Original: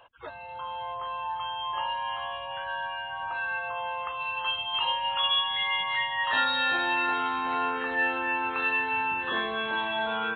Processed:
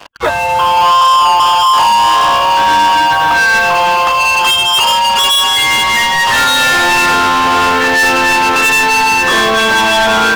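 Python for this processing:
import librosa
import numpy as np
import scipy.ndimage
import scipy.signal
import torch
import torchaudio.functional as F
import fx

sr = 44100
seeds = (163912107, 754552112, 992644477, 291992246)

y = fx.peak_eq(x, sr, hz=1000.0, db=12.5, octaves=0.23, at=(0.77, 3.13))
y = fx.leveller(y, sr, passes=5)
y = fx.rider(y, sr, range_db=4, speed_s=2.0)
y = y * librosa.db_to_amplitude(7.5)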